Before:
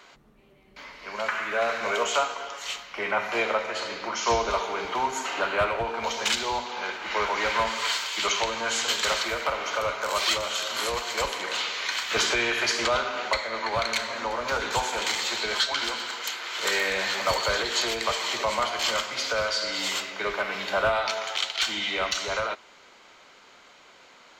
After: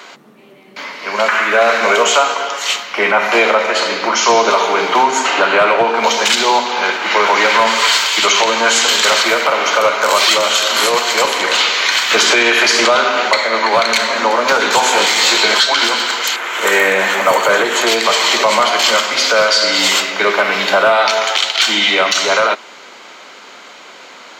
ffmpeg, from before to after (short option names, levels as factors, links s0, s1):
-filter_complex "[0:a]asettb=1/sr,asplit=3[s0][s1][s2];[s0]atrim=end=5.034[s3];[s1]atrim=start=5.03:end=5.96,asetpts=PTS-STARTPTS,afade=t=in:d=0.004:c=qsin,afade=t=out:st=0.926:d=0.004:c=qsin,lowpass=7900[s4];[s2]atrim=start=5.956[s5];[s3][s4]acrossfade=d=0.004:c1=hsin:c2=qsin[s6];[s6][s5]acrossfade=d=0.004:c1=qsin:c2=hsin,asettb=1/sr,asplit=3[s7][s8][s9];[s7]atrim=end=14.844[s10];[s8]atrim=start=14.84:end=15.54,asetpts=PTS-STARTPTS,afade=t=in:d=0.004:c=qsin,afade=t=out:st=0.696:d=0.004:c=qsin,asplit=2[s11][s12];[s12]adelay=20,volume=0.708[s13];[s11][s13]amix=inputs=2:normalize=0,atrim=end_sample=30870[s14];[s9]atrim=start=15.536[s15];[s10][s14]acrossfade=d=0.004:c1=hsin:c2=qsin[s16];[s16][s15]acrossfade=d=0.004:c1=qsin:c2=hsin,asettb=1/sr,asplit=3[s17][s18][s19];[s17]atrim=end=16.364[s20];[s18]atrim=start=16.36:end=17.87,asetpts=PTS-STARTPTS,afade=t=in:d=0.004:c=qsin,afade=t=out:st=1.506:d=0.004:c=qsin,equalizer=f=4600:t=o:w=0.94:g=-14.5[s21];[s19]atrim=start=17.866[s22];[s20][s21]acrossfade=d=0.004:c1=hsin:c2=qsin[s23];[s23][s22]acrossfade=d=0.004:c1=qsin:c2=hsin,highpass=f=180:w=0.5412,highpass=f=180:w=1.3066,alimiter=level_in=7.08:limit=0.891:release=50:level=0:latency=1,volume=0.891"